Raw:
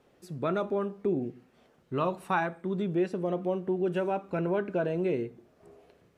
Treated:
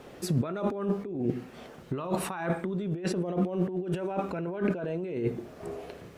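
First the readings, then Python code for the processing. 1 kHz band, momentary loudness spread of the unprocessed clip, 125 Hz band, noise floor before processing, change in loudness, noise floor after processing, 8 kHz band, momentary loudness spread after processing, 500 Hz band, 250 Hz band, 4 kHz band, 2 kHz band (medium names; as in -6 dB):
-3.5 dB, 5 LU, +4.0 dB, -65 dBFS, -1.0 dB, -48 dBFS, no reading, 11 LU, -2.5 dB, +1.5 dB, +3.5 dB, -3.5 dB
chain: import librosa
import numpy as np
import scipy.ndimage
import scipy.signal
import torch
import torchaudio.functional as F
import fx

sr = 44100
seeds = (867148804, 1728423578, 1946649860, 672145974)

y = fx.over_compress(x, sr, threshold_db=-39.0, ratio=-1.0)
y = y * 10.0 ** (8.0 / 20.0)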